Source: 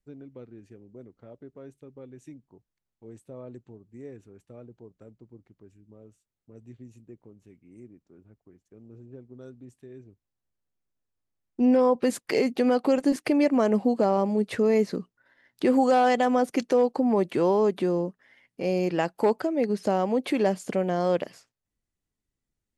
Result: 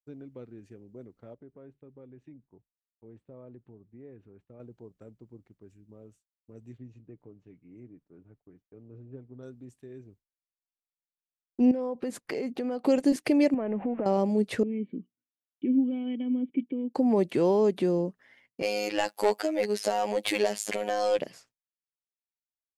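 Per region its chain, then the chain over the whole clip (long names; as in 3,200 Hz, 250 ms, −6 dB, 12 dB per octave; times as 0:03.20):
0:01.34–0:04.60: downward compressor 1.5 to 1, threshold −52 dBFS + high-frequency loss of the air 380 metres
0:06.78–0:09.43: high-frequency loss of the air 210 metres + comb filter 6.8 ms, depth 35%
0:11.71–0:12.84: high-shelf EQ 2,000 Hz −7 dB + downward compressor 4 to 1, threshold −29 dBFS
0:13.54–0:14.06: converter with a step at zero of −40 dBFS + Butterworth low-pass 2,700 Hz 48 dB per octave + downward compressor 4 to 1, threshold −27 dBFS
0:14.63–0:16.95: formant resonators in series i + notch comb filter 700 Hz
0:18.62–0:21.19: RIAA equalisation recording + mid-hump overdrive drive 16 dB, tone 2,400 Hz, clips at −10 dBFS + phases set to zero 104 Hz
whole clip: dynamic equaliser 1,200 Hz, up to −7 dB, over −40 dBFS, Q 1.2; downward expander −56 dBFS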